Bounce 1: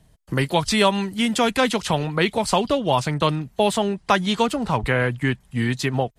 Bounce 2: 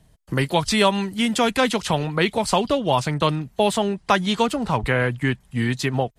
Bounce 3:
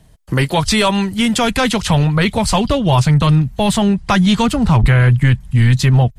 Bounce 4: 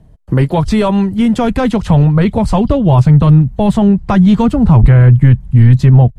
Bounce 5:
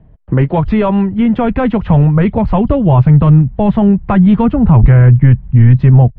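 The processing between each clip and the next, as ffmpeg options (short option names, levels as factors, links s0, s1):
-af anull
-af "asubboost=boost=7.5:cutoff=150,apsyclip=4.73,volume=0.473"
-af "tiltshelf=f=1400:g=9.5,volume=0.631"
-af "lowpass=f=2700:w=0.5412,lowpass=f=2700:w=1.3066"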